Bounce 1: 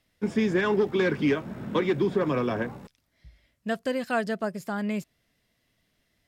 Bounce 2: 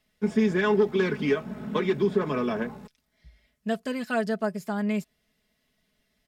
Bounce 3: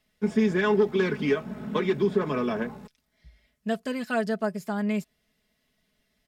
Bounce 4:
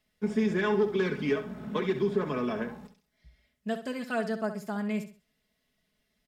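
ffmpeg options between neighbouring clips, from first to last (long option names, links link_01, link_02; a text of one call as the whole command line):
ffmpeg -i in.wav -af "aecho=1:1:4.7:0.66,volume=-2dB" out.wav
ffmpeg -i in.wav -af anull out.wav
ffmpeg -i in.wav -af "aecho=1:1:65|130|195:0.299|0.0866|0.0251,volume=-4dB" out.wav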